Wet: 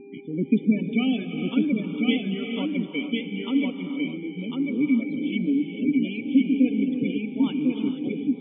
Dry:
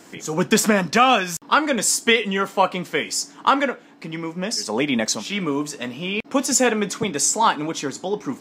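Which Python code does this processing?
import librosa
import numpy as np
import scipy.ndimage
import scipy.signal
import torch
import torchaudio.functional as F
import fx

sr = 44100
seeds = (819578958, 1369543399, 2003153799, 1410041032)

p1 = fx.dereverb_blind(x, sr, rt60_s=0.59)
p2 = fx.dmg_buzz(p1, sr, base_hz=400.0, harmonics=6, level_db=-35.0, tilt_db=-7, odd_only=False)
p3 = fx.formant_cascade(p2, sr, vowel='i')
p4 = fx.spec_gate(p3, sr, threshold_db=-25, keep='strong')
p5 = p4 + fx.echo_single(p4, sr, ms=1049, db=-3.5, dry=0)
p6 = fx.rev_gated(p5, sr, seeds[0], gate_ms=490, shape='rising', drr_db=6.0)
p7 = fx.echo_warbled(p6, sr, ms=310, feedback_pct=59, rate_hz=2.8, cents=61, wet_db=-22.5)
y = F.gain(torch.from_numpy(p7), 5.0).numpy()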